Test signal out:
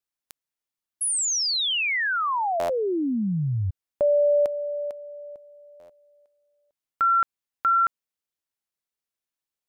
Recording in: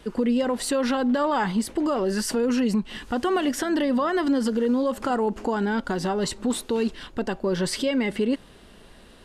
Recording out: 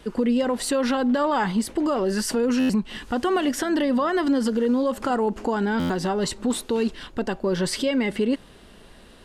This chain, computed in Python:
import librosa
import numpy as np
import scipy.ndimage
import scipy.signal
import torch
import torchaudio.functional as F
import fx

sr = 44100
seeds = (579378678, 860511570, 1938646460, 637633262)

y = fx.buffer_glitch(x, sr, at_s=(2.59, 5.79), block=512, repeats=8)
y = y * librosa.db_to_amplitude(1.0)